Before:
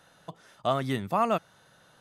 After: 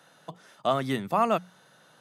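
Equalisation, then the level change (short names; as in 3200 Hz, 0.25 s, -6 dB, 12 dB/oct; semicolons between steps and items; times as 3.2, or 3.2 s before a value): HPF 130 Hz 24 dB/oct; notches 60/120/180 Hz; +1.5 dB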